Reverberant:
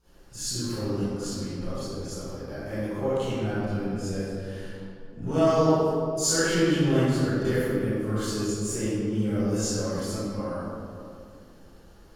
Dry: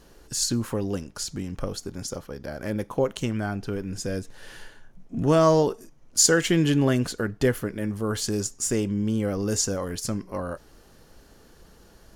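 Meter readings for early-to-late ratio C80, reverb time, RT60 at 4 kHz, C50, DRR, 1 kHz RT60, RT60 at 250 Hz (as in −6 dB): −3.5 dB, 2.3 s, 1.3 s, −8.5 dB, −16.0 dB, 2.2 s, 2.8 s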